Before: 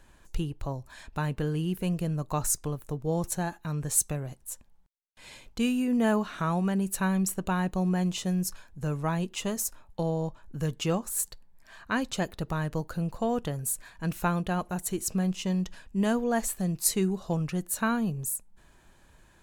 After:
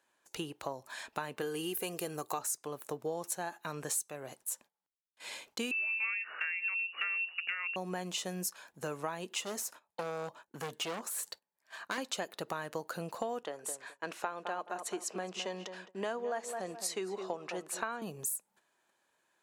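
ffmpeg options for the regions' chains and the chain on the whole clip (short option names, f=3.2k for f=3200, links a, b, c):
-filter_complex "[0:a]asettb=1/sr,asplit=3[a][b][c];[a]atrim=end=1.414[d];[b]atrim=start=1.41:end=2.39,asetpts=PTS-STARTPTS,afade=t=in:d=0.004:c=qsin,afade=t=out:st=0.976:d=0.004:c=qsin,highshelf=f=7.4k:g=11.5,aecho=1:1:2.5:0.46,atrim=end_sample=43218[e];[c]atrim=start=2.386[f];[d][e]acrossfade=d=0.004:c1=hsin:c2=qsin[g];[g][f]acrossfade=d=0.004:c1=qsin:c2=hsin,asettb=1/sr,asplit=3[h][i][j];[h]atrim=end=5.714[k];[i]atrim=start=5.71:end=7.76,asetpts=PTS-STARTPTS,afade=t=in:d=0.004:c=qsin,afade=t=out:st=2.046:d=0.004:c=qsin,bandreject=f=60:t=h:w=6,bandreject=f=120:t=h:w=6,bandreject=f=180:t=h:w=6,bandreject=f=240:t=h:w=6,bandreject=f=300:t=h:w=6,bandreject=f=360:t=h:w=6,lowpass=f=2.5k:t=q:w=0.5098,lowpass=f=2.5k:t=q:w=0.6013,lowpass=f=2.5k:t=q:w=0.9,lowpass=f=2.5k:t=q:w=2.563,afreqshift=-2900[l];[j]atrim=start=7.756[m];[k][l]acrossfade=d=0.004:c1=hsin:c2=qsin[n];[n][m]acrossfade=d=0.004:c1=qsin:c2=hsin,asettb=1/sr,asplit=3[o][p][q];[o]atrim=end=9.414[r];[p]atrim=start=9.41:end=11.98,asetpts=PTS-STARTPTS,afade=t=in:d=0.004:c=qsin,afade=t=out:st=2.566:d=0.004:c=qsin,highpass=f=58:w=0.5412,highpass=f=58:w=1.3066,acrossover=split=4200[s][t];[t]acompressor=threshold=-39dB:ratio=4:attack=1:release=60[u];[s][u]amix=inputs=2:normalize=0,volume=31.5dB,asoftclip=hard,volume=-31.5dB[v];[q]atrim=start=11.976[w];[r][v]acrossfade=d=0.004:c1=hsin:c2=qsin[x];[x][w]acrossfade=d=0.004:c1=qsin:c2=hsin,asettb=1/sr,asplit=3[y][z][aa];[y]atrim=end=13.434[ab];[z]atrim=start=13.43:end=18.02,asetpts=PTS-STARTPTS,afade=t=in:d=0.004:c=qsin,afade=t=out:st=4.586:d=0.004:c=qsin,highpass=310,lowpass=7.4k,highshelf=f=2.7k:g=-6.5,asplit=2[ac][ad];[ad]adelay=212,lowpass=f=1.7k:p=1,volume=-10.5dB,asplit=2[ae][af];[af]adelay=212,lowpass=f=1.7k:p=1,volume=0.25,asplit=2[ag][ah];[ah]adelay=212,lowpass=f=1.7k:p=1,volume=0.25[ai];[ac][ae][ag][ai]amix=inputs=4:normalize=0,atrim=end_sample=202419[aj];[aa]atrim=start=18.016[ak];[ab][aj]acrossfade=d=0.004:c1=hsin:c2=qsin[al];[al][ak]acrossfade=d=0.004:c1=qsin:c2=hsin,agate=range=-17dB:threshold=-51dB:ratio=16:detection=peak,highpass=430,acompressor=threshold=-38dB:ratio=6,volume=4.5dB"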